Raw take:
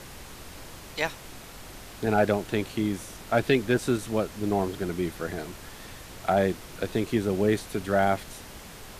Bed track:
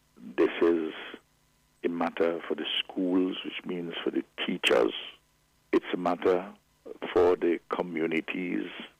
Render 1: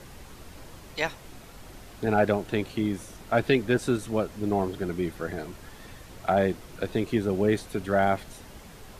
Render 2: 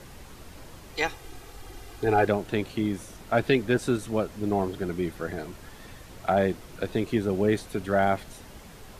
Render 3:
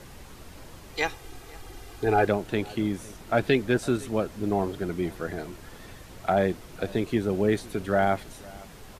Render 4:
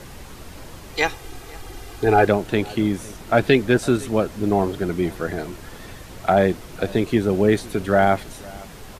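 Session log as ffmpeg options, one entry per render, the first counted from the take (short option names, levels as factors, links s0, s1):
-af "afftdn=nr=6:nf=-44"
-filter_complex "[0:a]asettb=1/sr,asplit=3[s0][s1][s2];[s0]atrim=end=0.934[s3];[s1]atrim=start=0.93:end=2.27,asetpts=PTS-STARTPTS,afade=t=in:d=0.004:c=qsin,afade=t=out:st=1.336:d=0.004:c=qsin,aecho=1:1:2.5:0.65,atrim=end_sample=59094[s4];[s2]atrim=start=2.266[s5];[s3][s4]acrossfade=d=0.004:c1=hsin:c2=qsin[s6];[s6][s5]acrossfade=d=0.004:c1=qsin:c2=hsin"
-filter_complex "[0:a]asplit=2[s0][s1];[s1]adelay=507.3,volume=0.0794,highshelf=f=4000:g=-11.4[s2];[s0][s2]amix=inputs=2:normalize=0"
-af "volume=2.11"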